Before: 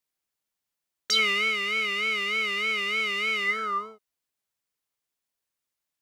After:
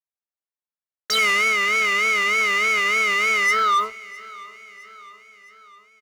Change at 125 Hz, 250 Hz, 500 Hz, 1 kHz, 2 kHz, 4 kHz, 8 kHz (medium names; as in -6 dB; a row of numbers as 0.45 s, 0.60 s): no reading, +2.0 dB, +6.0 dB, +10.5 dB, +7.5 dB, +2.0 dB, +9.5 dB